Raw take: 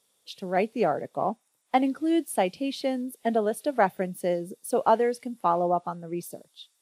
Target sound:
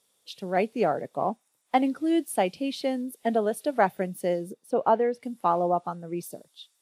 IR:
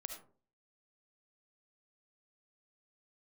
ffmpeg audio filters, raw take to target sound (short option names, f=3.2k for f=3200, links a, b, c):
-filter_complex "[0:a]asplit=3[a][b][c];[a]afade=t=out:st=4.52:d=0.02[d];[b]lowpass=f=1.6k:p=1,afade=t=in:st=4.52:d=0.02,afade=t=out:st=5.22:d=0.02[e];[c]afade=t=in:st=5.22:d=0.02[f];[d][e][f]amix=inputs=3:normalize=0"